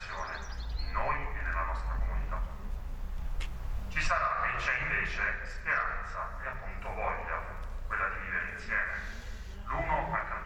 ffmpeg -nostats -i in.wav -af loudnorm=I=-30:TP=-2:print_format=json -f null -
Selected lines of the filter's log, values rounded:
"input_i" : "-34.2",
"input_tp" : "-14.6",
"input_lra" : "4.5",
"input_thresh" : "-44.4",